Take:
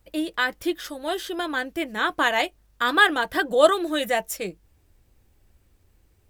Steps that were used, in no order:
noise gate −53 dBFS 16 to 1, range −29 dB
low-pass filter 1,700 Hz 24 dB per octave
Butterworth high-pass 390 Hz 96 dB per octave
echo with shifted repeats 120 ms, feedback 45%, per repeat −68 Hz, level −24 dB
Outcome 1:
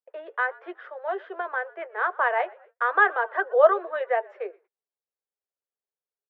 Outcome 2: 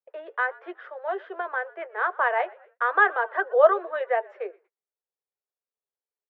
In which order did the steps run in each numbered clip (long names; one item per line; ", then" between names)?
low-pass filter, then echo with shifted repeats, then Butterworth high-pass, then noise gate
echo with shifted repeats, then Butterworth high-pass, then noise gate, then low-pass filter